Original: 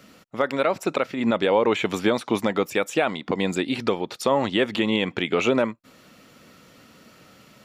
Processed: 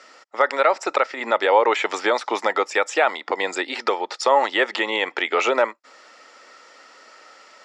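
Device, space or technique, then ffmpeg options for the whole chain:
phone speaker on a table: -af "highpass=frequency=370:width=0.5412,highpass=frequency=370:width=1.3066,equalizer=frequency=590:width_type=q:width=4:gain=3,equalizer=frequency=860:width_type=q:width=4:gain=9,equalizer=frequency=1300:width_type=q:width=4:gain=7,equalizer=frequency=1900:width_type=q:width=4:gain=9,equalizer=frequency=5100:width_type=q:width=4:gain=9,equalizer=frequency=7400:width_type=q:width=4:gain=5,lowpass=frequency=7800:width=0.5412,lowpass=frequency=7800:width=1.3066"

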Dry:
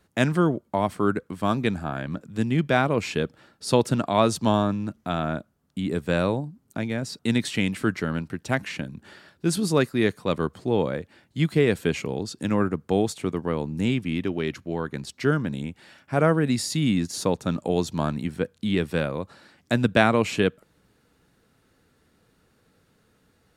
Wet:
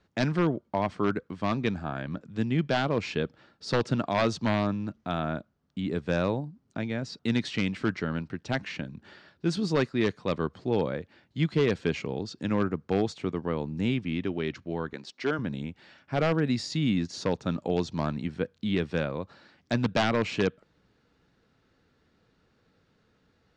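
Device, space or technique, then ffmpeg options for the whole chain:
synthesiser wavefolder: -filter_complex "[0:a]aeval=exprs='0.237*(abs(mod(val(0)/0.237+3,4)-2)-1)':channel_layout=same,lowpass=frequency=5800:width=0.5412,lowpass=frequency=5800:width=1.3066,asettb=1/sr,asplit=3[link_01][link_02][link_03];[link_01]atrim=end=14.934[link_04];[link_02]atrim=start=14.93:end=15.39,asetpts=PTS-STARTPTS,afade=type=in:duration=0.004:curve=qsin,afade=type=out:start_time=0.456:duration=0.004:curve=qsin,highpass=280[link_05];[link_03]atrim=start=15.386[link_06];[link_04][link_05]acrossfade=duration=0.004:curve1=hsin:curve2=qsin[link_07];[link_07][link_06]acrossfade=duration=0.004:curve1=qsin:curve2=hsin,volume=-3.5dB"

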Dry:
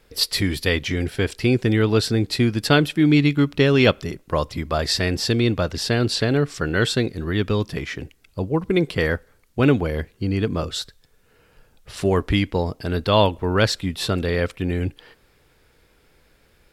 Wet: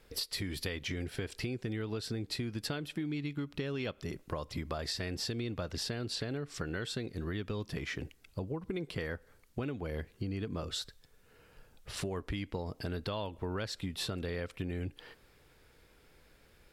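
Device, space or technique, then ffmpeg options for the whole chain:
serial compression, peaks first: -af "acompressor=threshold=-25dB:ratio=6,acompressor=threshold=-32dB:ratio=2,volume=-4.5dB"

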